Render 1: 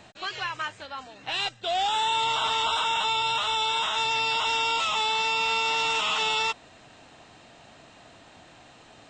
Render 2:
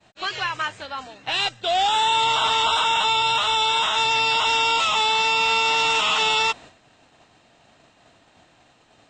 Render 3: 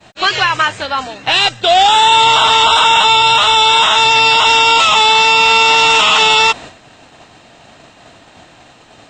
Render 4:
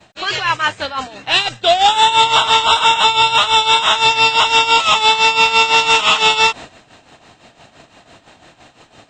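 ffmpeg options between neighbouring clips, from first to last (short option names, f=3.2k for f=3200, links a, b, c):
-af "agate=range=-33dB:threshold=-43dB:ratio=3:detection=peak,volume=5.5dB"
-af "alimiter=level_in=15dB:limit=-1dB:release=50:level=0:latency=1,volume=-1dB"
-af "tremolo=f=5.9:d=0.72"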